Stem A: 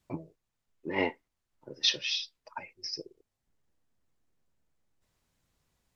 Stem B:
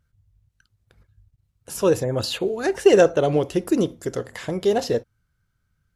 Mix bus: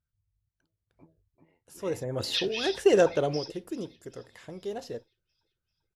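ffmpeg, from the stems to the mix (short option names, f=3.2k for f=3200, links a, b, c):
-filter_complex "[0:a]acrossover=split=4000[a][b];[b]acompressor=threshold=-38dB:ratio=4:attack=1:release=60[c];[a][c]amix=inputs=2:normalize=0,adelay=500,volume=-0.5dB,asplit=2[d][e];[e]volume=-19dB[f];[1:a]volume=-6.5dB,afade=t=in:st=1.77:d=0.5:silence=0.281838,afade=t=out:st=3.22:d=0.24:silence=0.354813,asplit=2[g][h];[h]apad=whole_len=284639[i];[d][i]sidechaingate=range=-42dB:threshold=-46dB:ratio=16:detection=peak[j];[f]aecho=0:1:391|782|1173|1564|1955|2346|2737|3128:1|0.55|0.303|0.166|0.0915|0.0503|0.0277|0.0152[k];[j][g][k]amix=inputs=3:normalize=0"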